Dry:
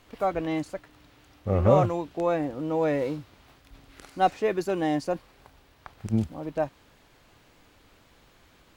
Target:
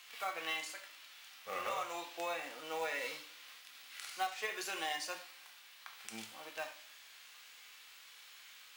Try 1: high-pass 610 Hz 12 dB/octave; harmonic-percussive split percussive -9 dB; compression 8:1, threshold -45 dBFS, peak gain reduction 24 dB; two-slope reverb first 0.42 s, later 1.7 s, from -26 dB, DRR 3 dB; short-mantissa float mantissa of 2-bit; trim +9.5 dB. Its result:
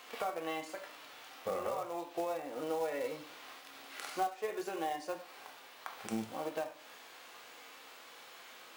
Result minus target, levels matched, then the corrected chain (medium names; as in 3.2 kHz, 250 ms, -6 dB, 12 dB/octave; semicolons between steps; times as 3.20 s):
2 kHz band -6.0 dB
high-pass 2 kHz 12 dB/octave; harmonic-percussive split percussive -9 dB; compression 8:1, threshold -45 dBFS, peak gain reduction 11.5 dB; two-slope reverb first 0.42 s, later 1.7 s, from -26 dB, DRR 3 dB; short-mantissa float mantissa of 2-bit; trim +9.5 dB